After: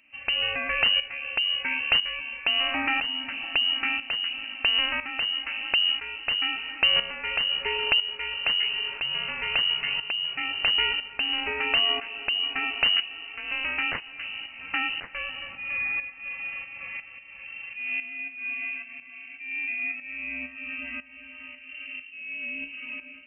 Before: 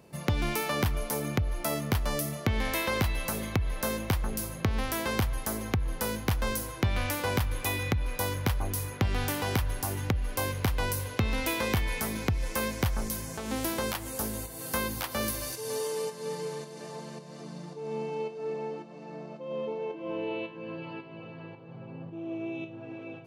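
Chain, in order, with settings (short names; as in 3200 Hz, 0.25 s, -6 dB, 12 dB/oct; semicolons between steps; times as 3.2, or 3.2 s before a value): tremolo saw up 1 Hz, depth 70%; inverted band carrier 2900 Hz; gain +5 dB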